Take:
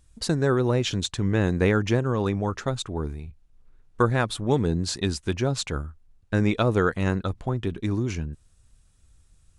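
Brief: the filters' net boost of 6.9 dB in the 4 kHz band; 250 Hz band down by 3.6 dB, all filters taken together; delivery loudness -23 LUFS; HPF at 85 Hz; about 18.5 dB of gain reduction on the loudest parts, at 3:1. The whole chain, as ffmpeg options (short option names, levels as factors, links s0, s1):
-af "highpass=85,equalizer=f=250:t=o:g=-5,equalizer=f=4000:t=o:g=8,acompressor=threshold=0.00631:ratio=3,volume=8.91"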